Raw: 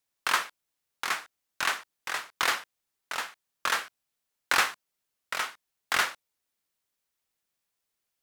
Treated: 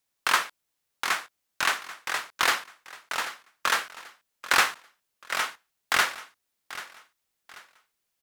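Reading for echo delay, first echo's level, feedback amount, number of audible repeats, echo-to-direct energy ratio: 787 ms, −15.5 dB, 33%, 3, −15.0 dB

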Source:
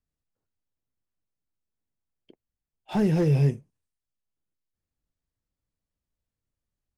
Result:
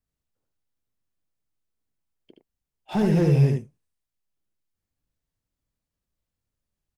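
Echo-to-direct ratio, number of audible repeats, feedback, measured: −4.0 dB, 1, repeats not evenly spaced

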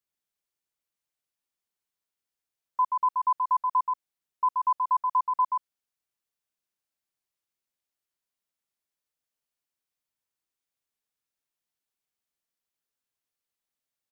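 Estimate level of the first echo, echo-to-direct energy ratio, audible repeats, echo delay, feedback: −4.0 dB, −4.0 dB, 1, 129 ms, repeats not evenly spaced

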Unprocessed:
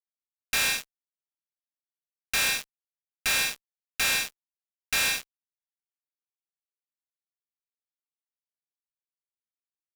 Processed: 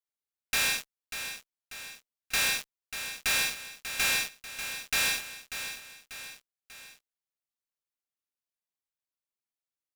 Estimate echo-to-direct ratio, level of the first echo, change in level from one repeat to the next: −9.0 dB, −10.0 dB, −6.0 dB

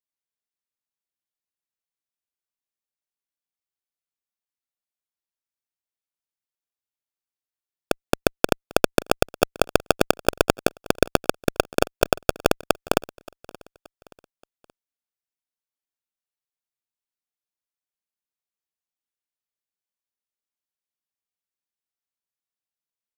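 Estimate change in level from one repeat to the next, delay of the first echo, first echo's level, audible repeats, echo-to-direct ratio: −7.5 dB, 576 ms, −23.0 dB, 2, −22.0 dB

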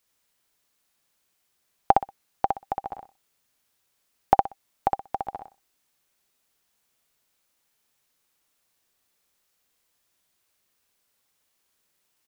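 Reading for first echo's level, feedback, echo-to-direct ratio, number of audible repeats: −3.0 dB, 19%, −3.0 dB, 3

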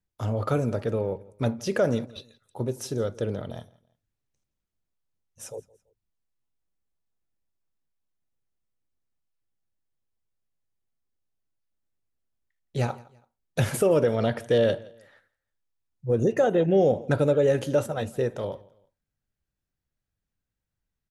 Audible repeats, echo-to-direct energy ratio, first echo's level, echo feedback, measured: 2, −22.5 dB, −23.0 dB, 34%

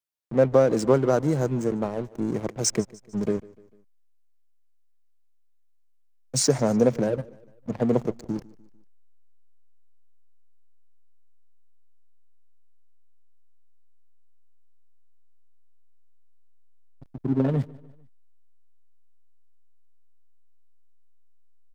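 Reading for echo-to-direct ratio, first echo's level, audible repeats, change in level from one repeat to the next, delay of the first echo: −21.0 dB, −22.0 dB, 3, −6.0 dB, 149 ms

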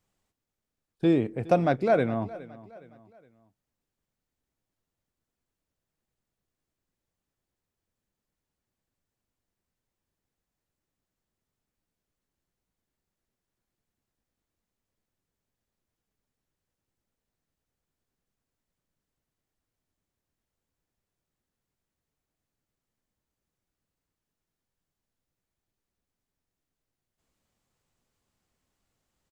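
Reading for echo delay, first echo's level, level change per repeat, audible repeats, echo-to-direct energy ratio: 415 ms, −19.0 dB, −7.5 dB, 3, −18.0 dB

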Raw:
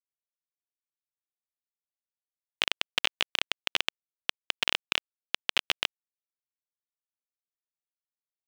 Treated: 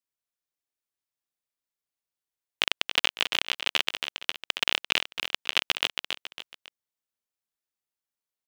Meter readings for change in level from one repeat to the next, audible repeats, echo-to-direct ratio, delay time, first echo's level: −8.0 dB, 3, −7.0 dB, 276 ms, −7.5 dB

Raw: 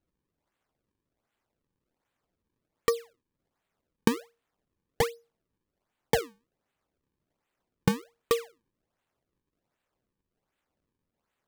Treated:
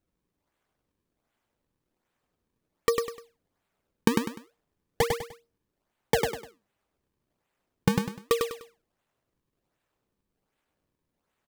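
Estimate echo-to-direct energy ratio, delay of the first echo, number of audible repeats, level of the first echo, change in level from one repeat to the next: −3.5 dB, 100 ms, 3, −4.0 dB, −10.0 dB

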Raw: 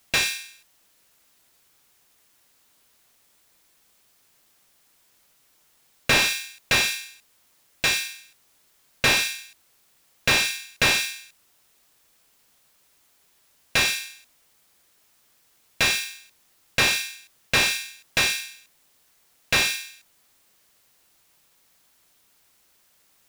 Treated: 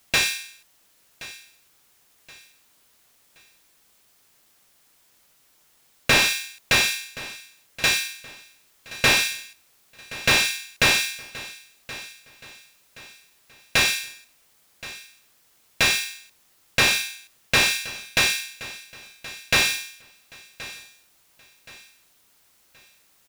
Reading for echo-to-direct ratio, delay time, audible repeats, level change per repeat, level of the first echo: −17.5 dB, 1,074 ms, 2, −8.5 dB, −18.0 dB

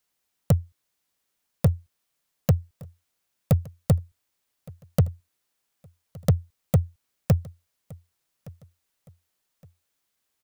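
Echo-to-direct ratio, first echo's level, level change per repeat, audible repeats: −22.5 dB, −23.0 dB, −10.0 dB, 2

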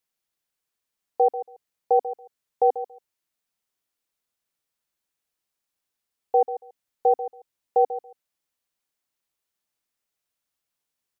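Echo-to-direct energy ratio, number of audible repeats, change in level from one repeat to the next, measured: −12.5 dB, 2, −16.5 dB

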